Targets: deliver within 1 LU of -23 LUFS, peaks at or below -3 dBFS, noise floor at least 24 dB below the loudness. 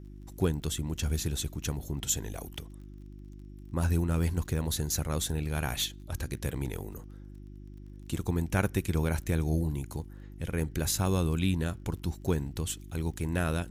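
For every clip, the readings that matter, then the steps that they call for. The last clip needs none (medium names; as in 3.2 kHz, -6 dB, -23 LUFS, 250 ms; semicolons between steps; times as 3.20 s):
tick rate 27 per s; hum 50 Hz; highest harmonic 350 Hz; hum level -42 dBFS; loudness -32.0 LUFS; peak level -13.5 dBFS; loudness target -23.0 LUFS
-> de-click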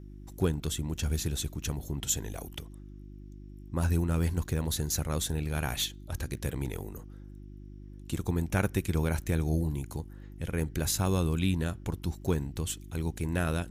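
tick rate 0.15 per s; hum 50 Hz; highest harmonic 350 Hz; hum level -43 dBFS
-> de-hum 50 Hz, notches 7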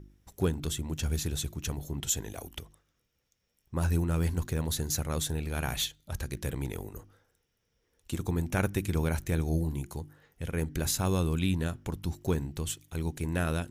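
hum not found; loudness -32.0 LUFS; peak level -14.5 dBFS; loudness target -23.0 LUFS
-> trim +9 dB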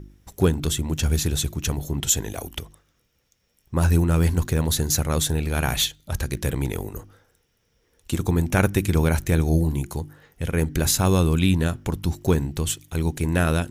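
loudness -23.0 LUFS; peak level -5.5 dBFS; noise floor -69 dBFS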